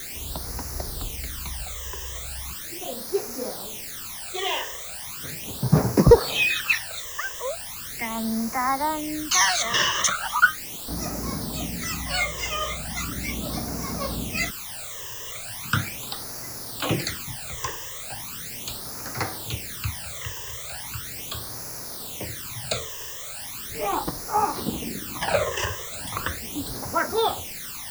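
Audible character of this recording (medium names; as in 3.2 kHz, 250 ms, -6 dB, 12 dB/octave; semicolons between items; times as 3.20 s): a quantiser's noise floor 6-bit, dither triangular; phasing stages 12, 0.38 Hz, lowest notch 230–3200 Hz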